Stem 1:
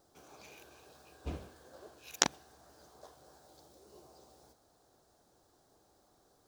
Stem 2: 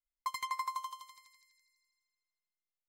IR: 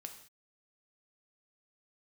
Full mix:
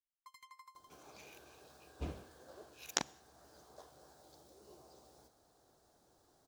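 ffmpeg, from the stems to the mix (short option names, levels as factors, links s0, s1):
-filter_complex "[0:a]adelay=750,volume=0.75,asplit=2[s0][s1];[s1]volume=0.224[s2];[1:a]equalizer=f=730:t=o:w=0.58:g=-11.5,volume=0.112[s3];[2:a]atrim=start_sample=2205[s4];[s2][s4]afir=irnorm=-1:irlink=0[s5];[s0][s3][s5]amix=inputs=3:normalize=0,alimiter=limit=0.316:level=0:latency=1:release=493"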